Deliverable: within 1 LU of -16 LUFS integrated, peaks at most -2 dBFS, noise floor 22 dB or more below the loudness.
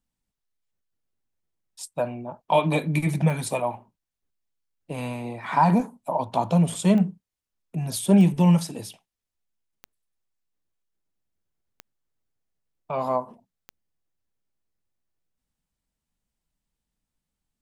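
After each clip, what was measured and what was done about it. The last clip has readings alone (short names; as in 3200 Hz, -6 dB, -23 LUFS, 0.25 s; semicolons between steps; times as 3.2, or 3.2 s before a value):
clicks 6; loudness -23.5 LUFS; peak -7.5 dBFS; loudness target -16.0 LUFS
-> de-click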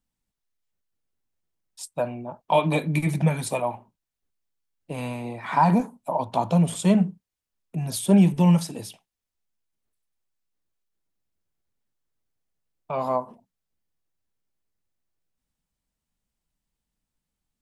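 clicks 0; loudness -23.5 LUFS; peak -7.5 dBFS; loudness target -16.0 LUFS
-> gain +7.5 dB; limiter -2 dBFS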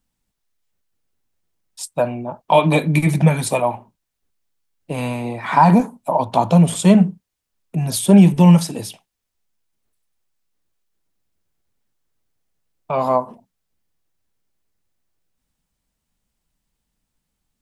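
loudness -16.5 LUFS; peak -2.0 dBFS; noise floor -78 dBFS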